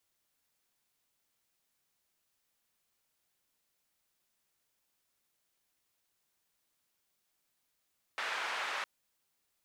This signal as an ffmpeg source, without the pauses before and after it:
-f lavfi -i "anoisesrc=c=white:d=0.66:r=44100:seed=1,highpass=f=910,lowpass=f=1900,volume=-19.4dB"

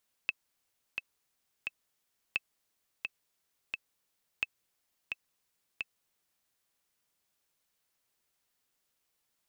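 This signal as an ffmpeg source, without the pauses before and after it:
-f lavfi -i "aevalsrc='pow(10,(-16-5*gte(mod(t,3*60/87),60/87))/20)*sin(2*PI*2620*mod(t,60/87))*exp(-6.91*mod(t,60/87)/0.03)':d=6.2:s=44100"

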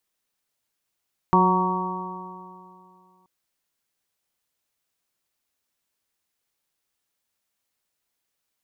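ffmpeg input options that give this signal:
-f lavfi -i "aevalsrc='0.112*pow(10,-3*t/2.49)*sin(2*PI*182.16*t)+0.0841*pow(10,-3*t/2.49)*sin(2*PI*365.31*t)+0.0211*pow(10,-3*t/2.49)*sin(2*PI*550.4*t)+0.0473*pow(10,-3*t/2.49)*sin(2*PI*738.41*t)+0.15*pow(10,-3*t/2.49)*sin(2*PI*930.25*t)+0.112*pow(10,-3*t/2.49)*sin(2*PI*1126.83*t)':d=1.93:s=44100"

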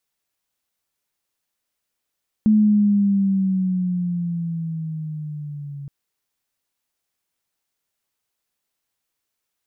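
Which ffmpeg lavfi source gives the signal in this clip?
-f lavfi -i "aevalsrc='pow(10,(-11-19.5*t/3.42)/20)*sin(2*PI*216*3.42/(-7.5*log(2)/12)*(exp(-7.5*log(2)/12*t/3.42)-1))':d=3.42:s=44100"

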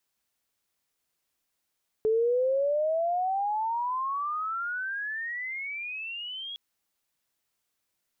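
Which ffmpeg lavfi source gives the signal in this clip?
-f lavfi -i "aevalsrc='pow(10,(-21-14*t/4.51)/20)*sin(2*PI*431*4.51/(35.5*log(2)/12)*(exp(35.5*log(2)/12*t/4.51)-1))':d=4.51:s=44100"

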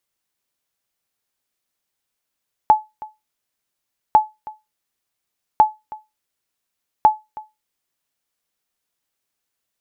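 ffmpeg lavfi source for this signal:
-f lavfi -i "aevalsrc='0.708*(sin(2*PI*860*mod(t,1.45))*exp(-6.91*mod(t,1.45)/0.21)+0.0891*sin(2*PI*860*max(mod(t,1.45)-0.32,0))*exp(-6.91*max(mod(t,1.45)-0.32,0)/0.21))':d=5.8:s=44100"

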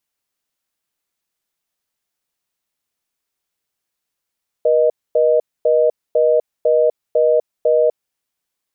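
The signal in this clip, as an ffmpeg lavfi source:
-f lavfi -i "aevalsrc='0.211*(sin(2*PI*480*t)+sin(2*PI*620*t))*clip(min(mod(t,0.5),0.25-mod(t,0.5))/0.005,0,1)':d=3.31:s=44100"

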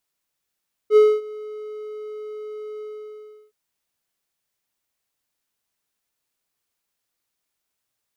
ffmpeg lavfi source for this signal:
-f lavfi -i "aevalsrc='0.501*(1-4*abs(mod(426*t+0.25,1)-0.5))':d=2.618:s=44100,afade=t=in:d=0.064,afade=t=out:st=0.064:d=0.244:silence=0.0708,afade=t=out:st=1.91:d=0.708"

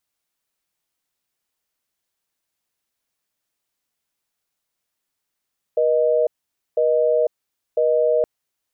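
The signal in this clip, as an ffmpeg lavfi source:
-f lavfi -i "aevalsrc='0.133*(sin(2*PI*480*t)+sin(2*PI*620*t))*clip(min(mod(t,1),0.5-mod(t,1))/0.005,0,1)':d=2.47:s=44100"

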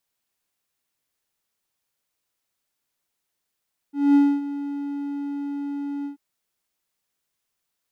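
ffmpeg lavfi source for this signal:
-f lavfi -i "aevalsrc='0.335*(1-4*abs(mod(284*t+0.25,1)-0.5))':d=2.236:s=44100,afade=t=in:d=0.217,afade=t=out:st=0.217:d=0.26:silence=0.178,afade=t=out:st=2.12:d=0.116"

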